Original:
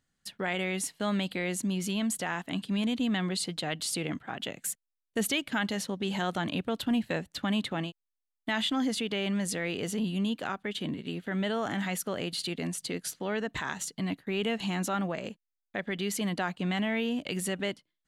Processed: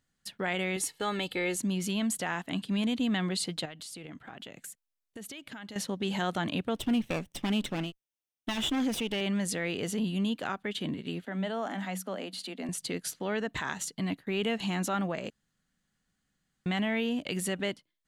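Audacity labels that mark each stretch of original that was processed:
0.760000	1.580000	comb 2.3 ms
3.650000	5.760000	compressor, threshold -41 dBFS
6.750000	9.210000	minimum comb delay 0.35 ms
11.250000	12.690000	rippled Chebyshev high-pass 180 Hz, ripple 6 dB
15.300000	16.660000	room tone

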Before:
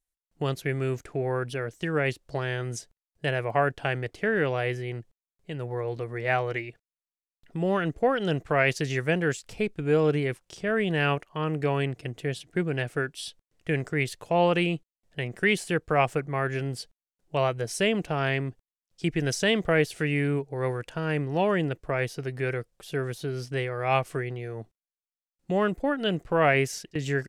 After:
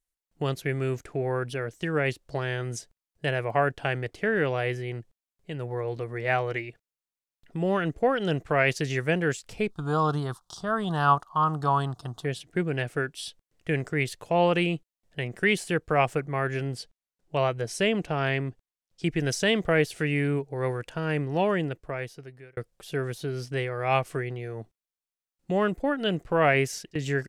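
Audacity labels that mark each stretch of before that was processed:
9.700000	12.250000	EQ curve 170 Hz 0 dB, 510 Hz -9 dB, 750 Hz +7 dB, 1200 Hz +14 dB, 2300 Hz -25 dB, 3600 Hz +6 dB, 7400 Hz +2 dB
16.650000	19.060000	high shelf 11000 Hz -8 dB
21.430000	22.570000	fade out

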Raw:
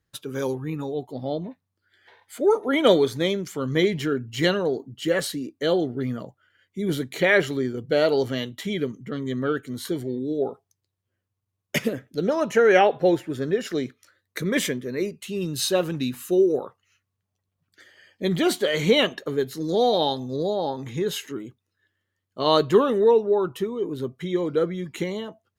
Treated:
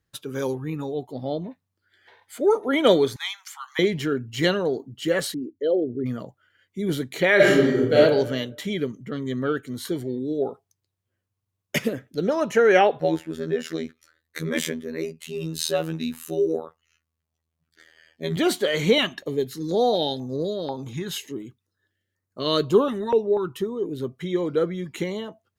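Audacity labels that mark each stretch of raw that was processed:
3.160000	3.790000	steep high-pass 780 Hz 96 dB/oct
5.340000	6.060000	formant sharpening exponent 2
7.350000	7.960000	reverb throw, RT60 0.93 s, DRR -7 dB
13.000000	18.370000	robotiser 80.6 Hz
18.980000	24.010000	stepped notch 4.1 Hz 480–3200 Hz

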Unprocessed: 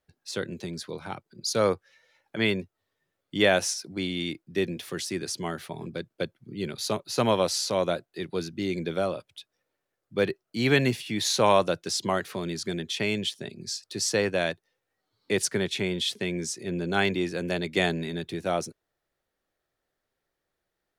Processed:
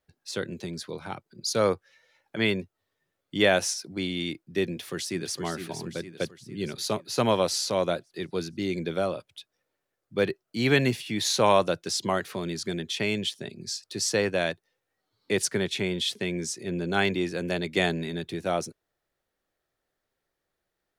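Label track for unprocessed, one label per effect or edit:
4.690000	5.390000	echo throw 0.46 s, feedback 55%, level -8 dB

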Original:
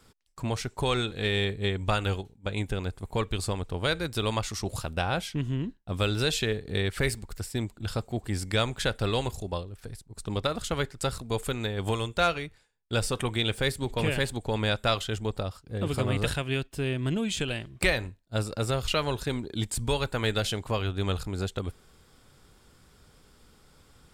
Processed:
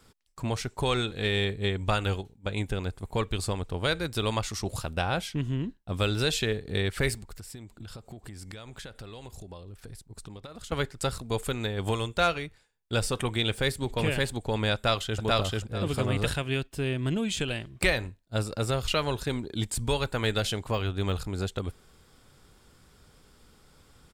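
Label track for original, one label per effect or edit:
7.150000	10.720000	compressor 20:1, threshold -38 dBFS
14.740000	15.220000	echo throw 0.44 s, feedback 20%, level 0 dB
20.740000	21.180000	de-esser amount 95%

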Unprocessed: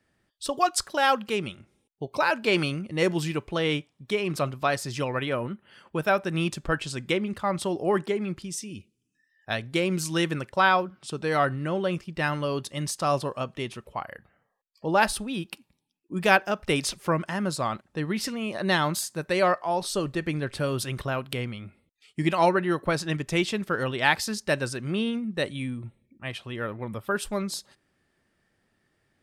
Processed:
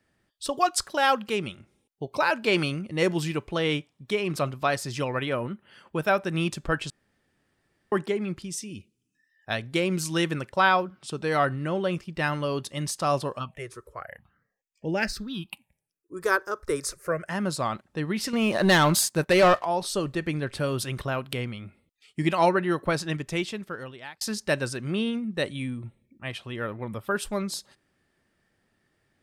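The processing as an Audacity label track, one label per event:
6.900000	7.920000	room tone
13.380000	17.290000	phaser stages 6, 0.78 Hz -> 0.14 Hz, lowest notch 190–1200 Hz
18.330000	19.650000	sample leveller passes 2
22.950000	24.210000	fade out

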